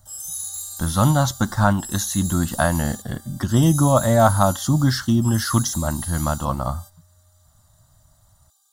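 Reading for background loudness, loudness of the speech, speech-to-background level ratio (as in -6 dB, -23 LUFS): -30.5 LUFS, -20.5 LUFS, 10.0 dB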